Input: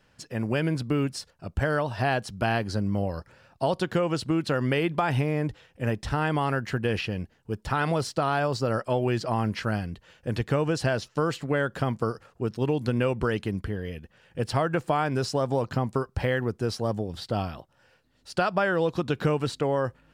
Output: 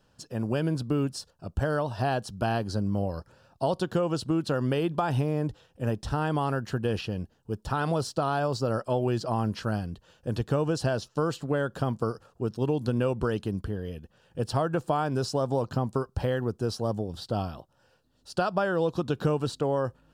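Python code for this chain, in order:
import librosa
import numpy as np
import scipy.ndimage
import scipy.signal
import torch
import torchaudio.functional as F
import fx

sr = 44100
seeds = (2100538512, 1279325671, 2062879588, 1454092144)

y = fx.peak_eq(x, sr, hz=2100.0, db=-14.5, octaves=0.53)
y = F.gain(torch.from_numpy(y), -1.0).numpy()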